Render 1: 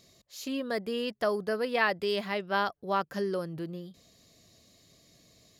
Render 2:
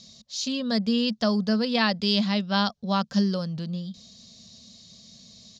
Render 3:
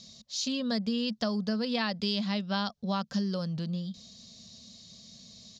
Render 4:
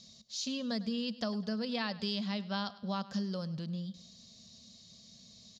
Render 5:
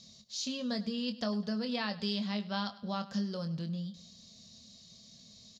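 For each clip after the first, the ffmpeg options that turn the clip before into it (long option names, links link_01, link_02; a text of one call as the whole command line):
ffmpeg -i in.wav -af "firequalizer=gain_entry='entry(150,0);entry(220,12);entry(310,-15);entry(480,-5);entry(910,-4);entry(2000,-7);entry(3700,8);entry(6000,8);entry(11000,-23)':delay=0.05:min_phase=1,volume=6dB" out.wav
ffmpeg -i in.wav -af "acompressor=threshold=-26dB:ratio=4,volume=-1.5dB" out.wav
ffmpeg -i in.wav -af "aecho=1:1:102|204|306|408:0.126|0.0567|0.0255|0.0115,volume=-5dB" out.wav
ffmpeg -i in.wav -filter_complex "[0:a]asplit=2[link_01][link_02];[link_02]adelay=24,volume=-8.5dB[link_03];[link_01][link_03]amix=inputs=2:normalize=0" out.wav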